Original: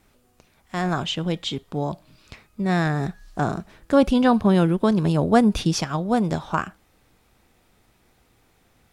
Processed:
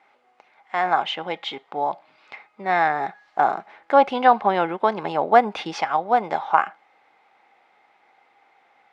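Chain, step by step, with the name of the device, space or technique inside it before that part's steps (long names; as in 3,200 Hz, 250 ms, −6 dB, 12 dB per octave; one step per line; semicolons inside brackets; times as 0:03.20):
tin-can telephone (band-pass filter 640–2,400 Hz; hollow resonant body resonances 810/2,100 Hz, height 12 dB, ringing for 35 ms)
level +5 dB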